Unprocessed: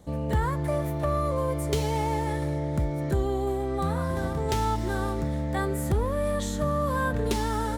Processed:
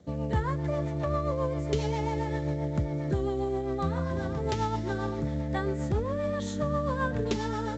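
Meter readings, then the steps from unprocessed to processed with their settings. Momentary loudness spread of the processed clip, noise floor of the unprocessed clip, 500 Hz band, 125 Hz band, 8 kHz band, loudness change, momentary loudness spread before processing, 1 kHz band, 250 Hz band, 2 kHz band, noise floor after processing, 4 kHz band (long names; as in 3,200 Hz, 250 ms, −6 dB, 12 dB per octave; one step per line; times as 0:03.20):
2 LU, −30 dBFS, −2.0 dB, −2.0 dB, −8.5 dB, −2.5 dB, 2 LU, −4.0 dB, −1.5 dB, −3.0 dB, −33 dBFS, −3.5 dB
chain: high-pass filter 70 Hz 24 dB per octave
high-shelf EQ 6,100 Hz −4.5 dB
rotating-speaker cabinet horn 7.5 Hz
mu-law 128 kbit/s 16,000 Hz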